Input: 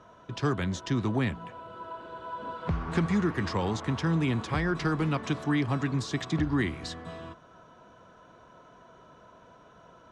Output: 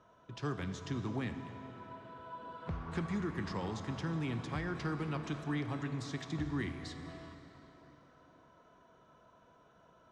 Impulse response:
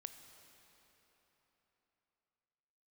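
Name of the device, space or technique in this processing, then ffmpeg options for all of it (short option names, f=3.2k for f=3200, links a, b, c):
cathedral: -filter_complex "[1:a]atrim=start_sample=2205[a];[0:a][a]afir=irnorm=-1:irlink=0,volume=-4.5dB"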